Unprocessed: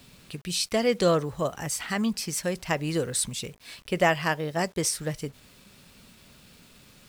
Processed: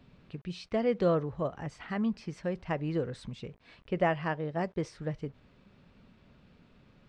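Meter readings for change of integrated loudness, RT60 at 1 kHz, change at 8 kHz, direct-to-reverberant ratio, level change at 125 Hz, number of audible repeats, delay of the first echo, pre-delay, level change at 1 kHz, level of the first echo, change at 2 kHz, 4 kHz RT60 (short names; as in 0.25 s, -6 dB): -6.0 dB, none, under -25 dB, none, -3.0 dB, none, none, none, -6.0 dB, none, -9.5 dB, none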